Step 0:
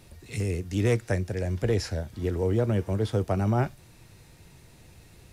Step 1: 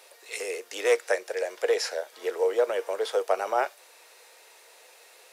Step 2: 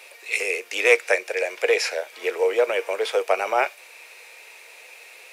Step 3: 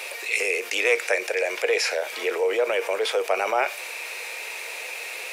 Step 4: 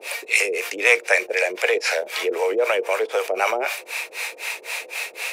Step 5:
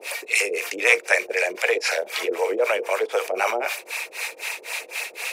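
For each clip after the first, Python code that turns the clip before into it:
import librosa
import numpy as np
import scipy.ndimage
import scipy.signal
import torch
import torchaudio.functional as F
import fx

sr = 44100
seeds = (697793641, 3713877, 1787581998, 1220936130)

y1 = scipy.signal.sosfilt(scipy.signal.ellip(4, 1.0, 80, 470.0, 'highpass', fs=sr, output='sos'), x)
y1 = y1 * 10.0 ** (6.0 / 20.0)
y2 = fx.peak_eq(y1, sr, hz=2400.0, db=14.0, octaves=0.44)
y2 = y2 * 10.0 ** (3.5 / 20.0)
y3 = fx.env_flatten(y2, sr, amount_pct=50)
y3 = y3 * 10.0 ** (-5.5 / 20.0)
y4 = fx.harmonic_tremolo(y3, sr, hz=3.9, depth_pct=100, crossover_hz=520.0)
y4 = y4 * 10.0 ** (8.0 / 20.0)
y5 = fx.filter_lfo_notch(y4, sr, shape='sine', hz=9.6, low_hz=390.0, high_hz=3900.0, q=1.7)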